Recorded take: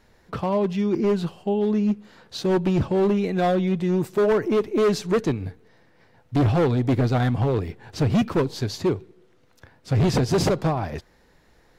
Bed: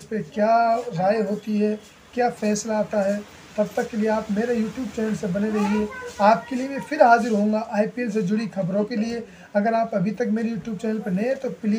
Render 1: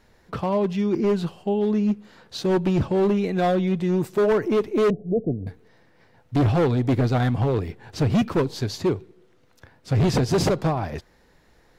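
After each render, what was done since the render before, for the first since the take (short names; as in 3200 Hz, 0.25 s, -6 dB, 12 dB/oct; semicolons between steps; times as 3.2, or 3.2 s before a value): 4.9–5.47 rippled Chebyshev low-pass 720 Hz, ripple 3 dB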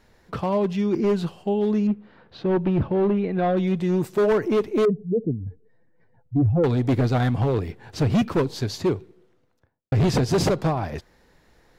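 1.87–3.57 air absorption 360 m; 4.85–6.64 spectral contrast raised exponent 1.9; 8.96–9.92 studio fade out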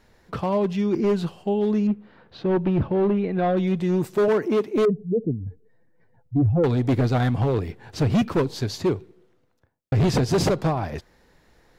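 4.28–4.76 Chebyshev high-pass 190 Hz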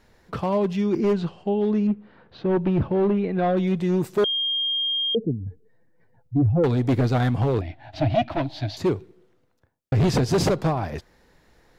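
1.13–2.57 air absorption 100 m; 4.24–5.15 bleep 3220 Hz -21.5 dBFS; 7.61–8.77 EQ curve 130 Hz 0 dB, 200 Hz -17 dB, 300 Hz +4 dB, 450 Hz -29 dB, 640 Hz +14 dB, 1100 Hz -7 dB, 2000 Hz +1 dB, 3800 Hz +1 dB, 7700 Hz -20 dB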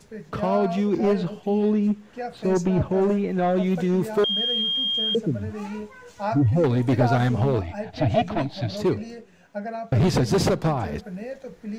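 add bed -11 dB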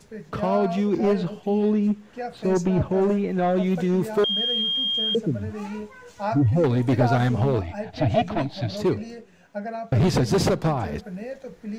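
nothing audible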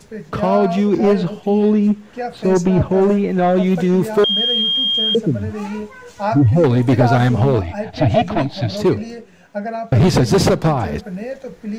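gain +7 dB; limiter -3 dBFS, peak gain reduction 2 dB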